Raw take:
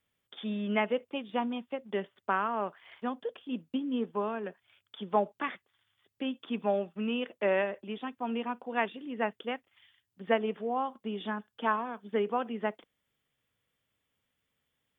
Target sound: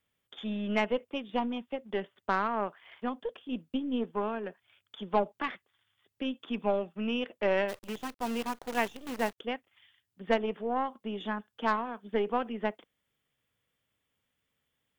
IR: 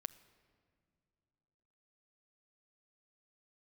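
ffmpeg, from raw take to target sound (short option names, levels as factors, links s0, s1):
-filter_complex "[0:a]asplit=3[s0][s1][s2];[s0]afade=t=out:st=7.68:d=0.02[s3];[s1]acrusher=bits=7:dc=4:mix=0:aa=0.000001,afade=t=in:st=7.68:d=0.02,afade=t=out:st=9.37:d=0.02[s4];[s2]afade=t=in:st=9.37:d=0.02[s5];[s3][s4][s5]amix=inputs=3:normalize=0,aeval=exprs='0.237*(cos(1*acos(clip(val(0)/0.237,-1,1)))-cos(1*PI/2))+0.015*(cos(6*acos(clip(val(0)/0.237,-1,1)))-cos(6*PI/2))':c=same"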